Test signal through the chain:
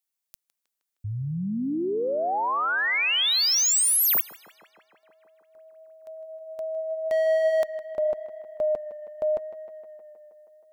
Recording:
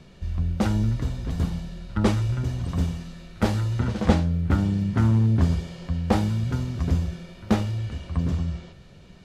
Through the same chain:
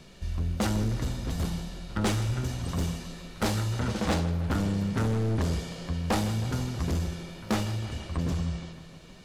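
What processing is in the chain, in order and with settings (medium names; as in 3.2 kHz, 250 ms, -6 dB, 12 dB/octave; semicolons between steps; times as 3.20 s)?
treble shelf 5 kHz +9.5 dB; hard clipper -20 dBFS; peaking EQ 98 Hz -4.5 dB 2.4 oct; on a send: tape echo 157 ms, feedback 79%, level -12.5 dB, low-pass 3.9 kHz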